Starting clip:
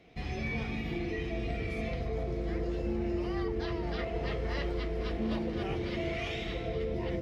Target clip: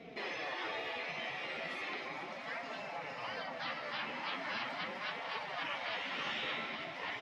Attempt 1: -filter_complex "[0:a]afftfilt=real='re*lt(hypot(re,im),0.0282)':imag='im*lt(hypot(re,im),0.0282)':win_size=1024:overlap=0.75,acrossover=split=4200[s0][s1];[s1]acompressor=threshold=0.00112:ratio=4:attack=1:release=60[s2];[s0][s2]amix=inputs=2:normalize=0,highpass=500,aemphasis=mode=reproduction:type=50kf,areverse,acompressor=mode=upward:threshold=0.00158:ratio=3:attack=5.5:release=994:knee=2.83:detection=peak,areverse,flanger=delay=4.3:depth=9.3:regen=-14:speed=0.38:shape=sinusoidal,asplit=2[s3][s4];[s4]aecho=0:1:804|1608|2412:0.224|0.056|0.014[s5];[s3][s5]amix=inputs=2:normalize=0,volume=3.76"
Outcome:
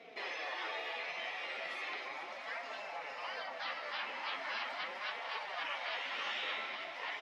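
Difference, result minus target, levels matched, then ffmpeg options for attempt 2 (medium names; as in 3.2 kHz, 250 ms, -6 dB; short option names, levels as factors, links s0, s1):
125 Hz band -17.5 dB
-filter_complex "[0:a]afftfilt=real='re*lt(hypot(re,im),0.0282)':imag='im*lt(hypot(re,im),0.0282)':win_size=1024:overlap=0.75,acrossover=split=4200[s0][s1];[s1]acompressor=threshold=0.00112:ratio=4:attack=1:release=60[s2];[s0][s2]amix=inputs=2:normalize=0,highpass=140,aemphasis=mode=reproduction:type=50kf,areverse,acompressor=mode=upward:threshold=0.00158:ratio=3:attack=5.5:release=994:knee=2.83:detection=peak,areverse,flanger=delay=4.3:depth=9.3:regen=-14:speed=0.38:shape=sinusoidal,asplit=2[s3][s4];[s4]aecho=0:1:804|1608|2412:0.224|0.056|0.014[s5];[s3][s5]amix=inputs=2:normalize=0,volume=3.76"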